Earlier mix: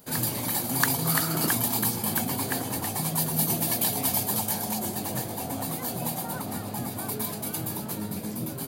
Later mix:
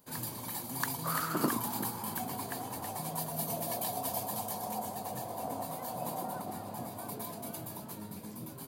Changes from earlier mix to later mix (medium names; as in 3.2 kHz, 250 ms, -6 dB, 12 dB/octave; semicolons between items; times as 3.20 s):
speech: muted; first sound -11.5 dB; master: add peaking EQ 1 kHz +7 dB 0.31 oct